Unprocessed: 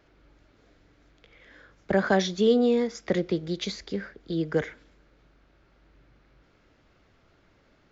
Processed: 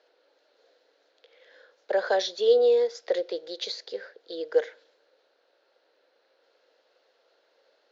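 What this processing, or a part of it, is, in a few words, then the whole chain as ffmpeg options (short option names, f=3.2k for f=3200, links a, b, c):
phone speaker on a table: -af "highpass=f=470:w=0.5412,highpass=f=470:w=1.3066,equalizer=f=500:t=q:w=4:g=10,equalizer=f=1.2k:t=q:w=4:g=-7,equalizer=f=2.2k:t=q:w=4:g=-7,equalizer=f=4.2k:t=q:w=4:g=7,lowpass=f=6.5k:w=0.5412,lowpass=f=6.5k:w=1.3066,volume=-1.5dB"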